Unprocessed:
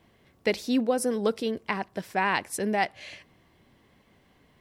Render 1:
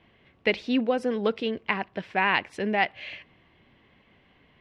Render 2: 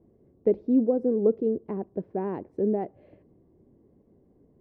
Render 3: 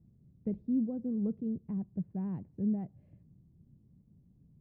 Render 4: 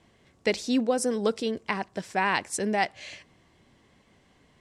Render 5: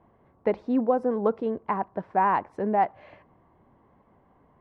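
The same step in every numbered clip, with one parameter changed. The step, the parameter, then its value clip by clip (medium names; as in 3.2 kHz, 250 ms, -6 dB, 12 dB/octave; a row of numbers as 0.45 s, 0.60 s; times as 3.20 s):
resonant low-pass, frequency: 2.8 kHz, 400 Hz, 160 Hz, 7.7 kHz, 1 kHz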